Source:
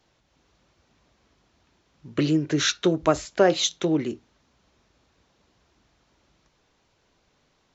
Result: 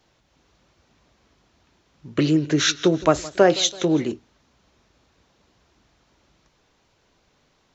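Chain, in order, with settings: 2.12–4.12 s: modulated delay 165 ms, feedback 50%, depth 64 cents, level -20 dB; trim +3 dB

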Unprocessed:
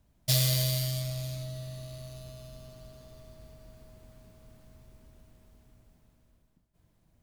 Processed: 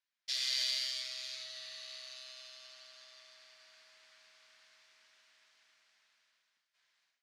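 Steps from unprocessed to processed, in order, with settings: level rider gain up to 16.5 dB; Chebyshev band-pass 1.7–5.2 kHz, order 2; trim -8 dB

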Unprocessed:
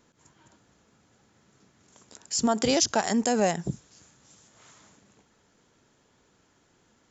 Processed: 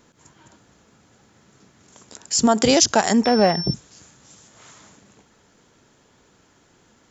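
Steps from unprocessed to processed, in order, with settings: 3.24–3.74 s: class-D stage that switches slowly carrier 5.4 kHz; trim +7.5 dB

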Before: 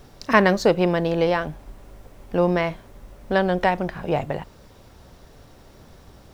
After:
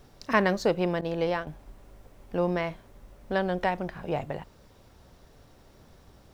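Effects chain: 1.01–1.47 s: expander -20 dBFS; trim -7 dB

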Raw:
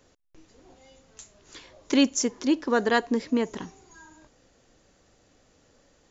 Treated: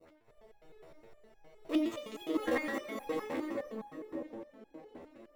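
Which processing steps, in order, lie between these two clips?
spectral sustain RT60 0.57 s; bass shelf 180 Hz -9 dB; compression 6:1, threshold -31 dBFS, peak gain reduction 13.5 dB; LFO low-pass saw up 9.5 Hz 260–2900 Hz; in parallel at -10 dB: sample-and-hold 31×; on the sum: tape speed +14%; on a send: two-band feedback delay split 820 Hz, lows 598 ms, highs 224 ms, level -3.5 dB; on the sum: spectral freeze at 0.30 s, 1.40 s; resonator arpeggio 9.7 Hz 81–830 Hz; trim +8 dB

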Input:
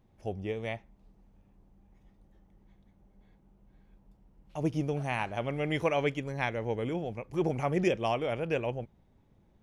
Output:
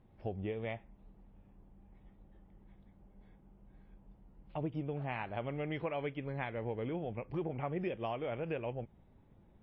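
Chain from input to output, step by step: compression 4:1, threshold -37 dBFS, peak gain reduction 13 dB; boxcar filter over 7 samples; trim +2 dB; MP3 24 kbps 16 kHz

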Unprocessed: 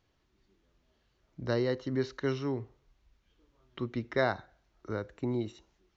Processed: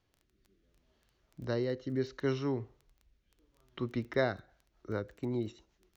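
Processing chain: rotary cabinet horn 0.7 Hz, later 8 Hz, at 4.18 s; crackle 10 per s -45 dBFS

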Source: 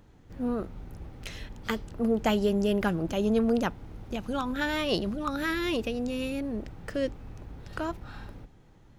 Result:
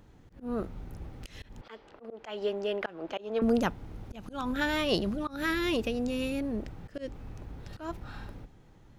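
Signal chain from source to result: 1.61–3.42 s: three-band isolator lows -23 dB, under 360 Hz, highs -21 dB, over 4.3 kHz; slow attack 180 ms

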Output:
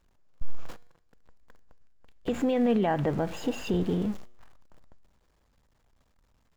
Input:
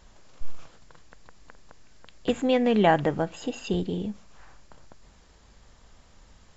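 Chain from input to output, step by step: jump at every zero crossing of -35.5 dBFS; gate -37 dBFS, range -28 dB; treble shelf 2.5 kHz -9 dB; peak limiter -19 dBFS, peak gain reduction 9.5 dB; feedback comb 120 Hz, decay 0.84 s, harmonics all, mix 40%; trim +5 dB

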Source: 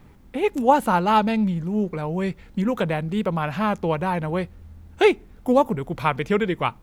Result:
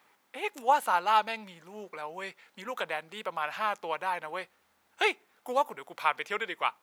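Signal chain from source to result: high-pass 850 Hz 12 dB/octave; trim -3 dB

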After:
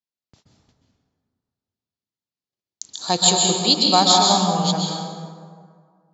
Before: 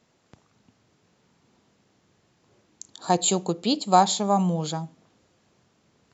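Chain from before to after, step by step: gate -56 dBFS, range -38 dB; peaking EQ 4.4 kHz +15 dB 1.5 oct; plate-style reverb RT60 2 s, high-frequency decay 0.5×, pre-delay 115 ms, DRR -0.5 dB; trim -1.5 dB

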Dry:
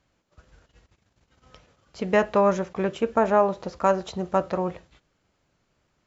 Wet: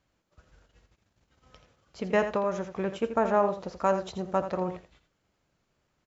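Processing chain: 2.34–2.96 s: compression, threshold -20 dBFS, peak gain reduction 5.5 dB; on a send: delay 83 ms -10.5 dB; on the sum: trim -4.5 dB

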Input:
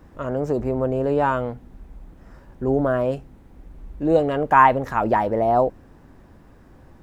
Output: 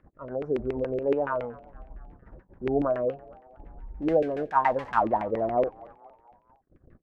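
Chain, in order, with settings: 4.02–5.03 s: zero-crossing glitches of -12.5 dBFS; spectral noise reduction 8 dB; gate -51 dBFS, range -50 dB; upward compressor, threshold -27 dBFS; LFO low-pass saw down 7.1 Hz 380–2300 Hz; rotary cabinet horn 8 Hz, later 0.85 Hz, at 0.55 s; frequency-shifting echo 231 ms, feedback 55%, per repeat +73 Hz, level -23 dB; attacks held to a fixed rise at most 410 dB/s; trim -5.5 dB

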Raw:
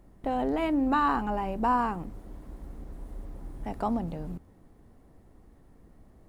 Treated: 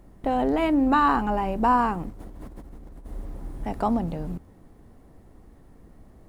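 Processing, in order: 2.10–3.06 s: compressor with a negative ratio -46 dBFS, ratio -1; trim +5 dB

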